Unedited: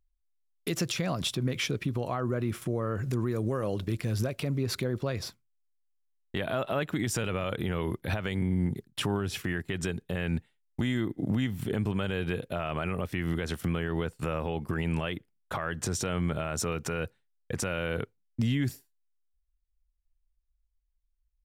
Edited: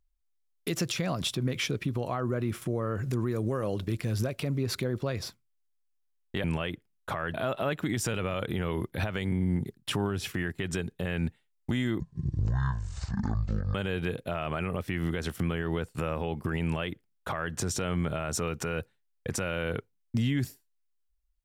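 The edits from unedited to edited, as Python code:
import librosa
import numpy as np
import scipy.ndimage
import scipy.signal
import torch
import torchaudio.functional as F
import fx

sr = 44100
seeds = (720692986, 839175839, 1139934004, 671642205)

y = fx.edit(x, sr, fx.speed_span(start_s=11.1, length_s=0.89, speed=0.51),
    fx.duplicate(start_s=14.87, length_s=0.9, to_s=6.44), tone=tone)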